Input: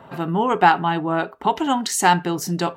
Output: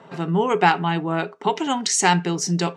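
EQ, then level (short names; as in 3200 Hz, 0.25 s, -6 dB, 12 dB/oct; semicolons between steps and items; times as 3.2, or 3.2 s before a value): high shelf 4800 Hz +12 dB; dynamic EQ 2400 Hz, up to +5 dB, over -41 dBFS, Q 4.4; speaker cabinet 150–7700 Hz, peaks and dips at 170 Hz +9 dB, 420 Hz +8 dB, 2100 Hz +4 dB, 5700 Hz +4 dB; -4.0 dB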